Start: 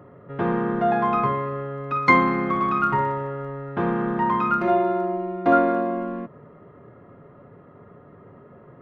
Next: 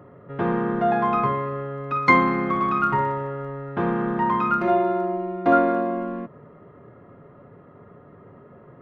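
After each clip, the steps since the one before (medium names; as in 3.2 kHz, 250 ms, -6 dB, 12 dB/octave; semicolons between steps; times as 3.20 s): no audible change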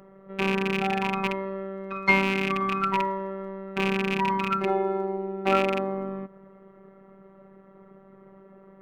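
rattle on loud lows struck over -26 dBFS, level -11 dBFS; robot voice 193 Hz; trim -1.5 dB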